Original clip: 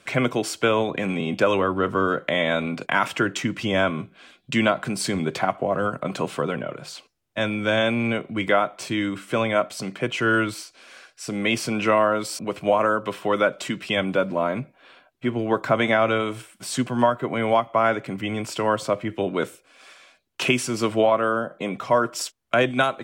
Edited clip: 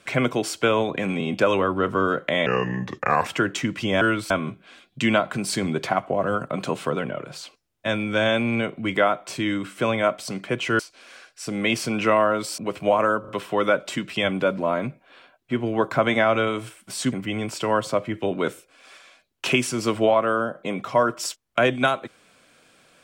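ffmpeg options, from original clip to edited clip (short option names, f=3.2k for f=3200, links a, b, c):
-filter_complex "[0:a]asplit=9[a][b][c][d][e][f][g][h][i];[a]atrim=end=2.464[j];[b]atrim=start=2.46:end=3.07,asetpts=PTS-STARTPTS,asetrate=33516,aresample=44100,atrim=end_sample=35396,asetpts=PTS-STARTPTS[k];[c]atrim=start=3.066:end=3.822[l];[d]atrim=start=10.308:end=10.602[m];[e]atrim=start=3.818:end=10.312[n];[f]atrim=start=10.598:end=13.052[o];[g]atrim=start=13.008:end=13.052[p];[h]atrim=start=13.008:end=16.852[q];[i]atrim=start=18.078[r];[j][k]acrossfade=d=0.004:c1=hsin:c2=hsin[s];[s][l]acrossfade=d=0.004:c1=hsin:c2=hsin[t];[t][m]acrossfade=d=0.004:c1=hsin:c2=hsin[u];[u][n]acrossfade=d=0.004:c1=hsin:c2=hsin[v];[v][o]acrossfade=d=0.004:c1=hsin:c2=hsin[w];[w][p]acrossfade=d=0.004:c1=hsin:c2=hsin[x];[x][q]acrossfade=d=0.004:c1=hsin:c2=hsin[y];[y][r]acrossfade=d=0.004:c1=hsin:c2=hsin"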